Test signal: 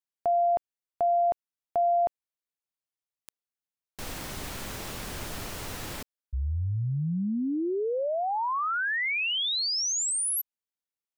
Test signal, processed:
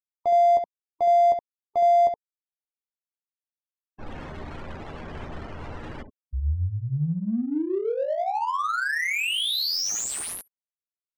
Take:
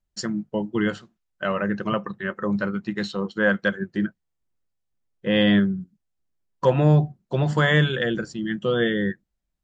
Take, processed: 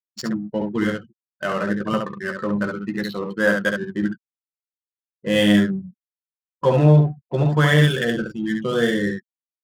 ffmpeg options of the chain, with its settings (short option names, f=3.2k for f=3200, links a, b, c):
-af "aecho=1:1:13|68:0.501|0.631,afftfilt=real='re*gte(hypot(re,im),0.0158)':imag='im*gte(hypot(re,im),0.0158)':win_size=1024:overlap=0.75,adynamicsmooth=sensitivity=7:basefreq=1.4k"